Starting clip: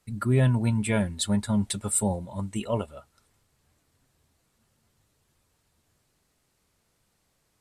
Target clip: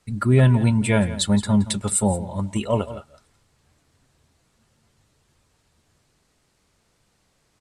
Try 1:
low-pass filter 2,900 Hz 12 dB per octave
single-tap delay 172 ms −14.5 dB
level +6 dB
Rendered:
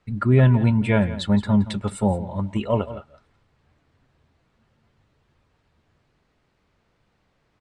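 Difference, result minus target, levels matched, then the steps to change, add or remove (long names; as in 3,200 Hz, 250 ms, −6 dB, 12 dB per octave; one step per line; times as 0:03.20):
8,000 Hz band −17.5 dB
change: low-pass filter 8,900 Hz 12 dB per octave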